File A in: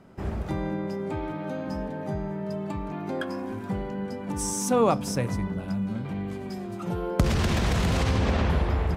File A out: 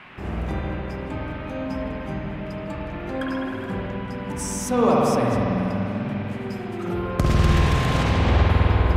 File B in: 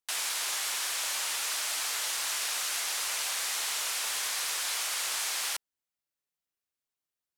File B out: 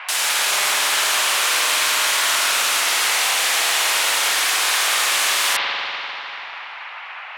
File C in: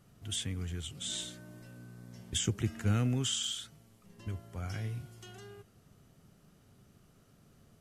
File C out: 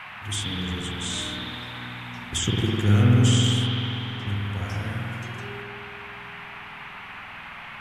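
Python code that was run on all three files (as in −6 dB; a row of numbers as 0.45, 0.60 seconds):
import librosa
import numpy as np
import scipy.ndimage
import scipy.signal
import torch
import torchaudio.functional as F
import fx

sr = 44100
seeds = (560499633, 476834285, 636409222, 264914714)

y = fx.rev_spring(x, sr, rt60_s=3.2, pass_ms=(49,), chirp_ms=30, drr_db=-4.5)
y = fx.dmg_noise_band(y, sr, seeds[0], low_hz=740.0, high_hz=2700.0, level_db=-45.0)
y = librosa.util.normalize(y) * 10.0 ** (-6 / 20.0)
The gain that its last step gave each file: −0.5, +10.5, +5.0 decibels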